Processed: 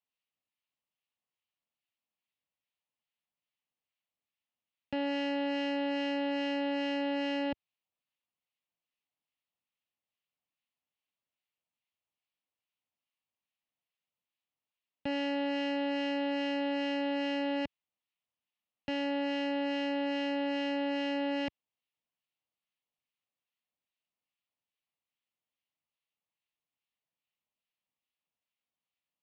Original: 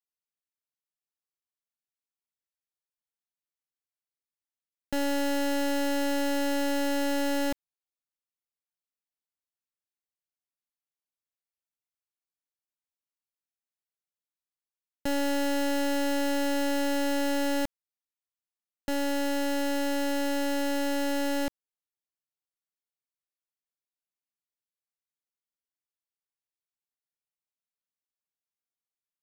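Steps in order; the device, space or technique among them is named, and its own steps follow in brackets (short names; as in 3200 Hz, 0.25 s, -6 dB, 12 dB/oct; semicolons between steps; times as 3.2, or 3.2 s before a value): guitar amplifier with harmonic tremolo (harmonic tremolo 2.4 Hz, depth 50%, crossover 1200 Hz; soft clip -36.5 dBFS, distortion -12 dB; speaker cabinet 82–3800 Hz, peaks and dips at 390 Hz -9 dB, 1500 Hz -9 dB, 2800 Hz +5 dB); gain +7.5 dB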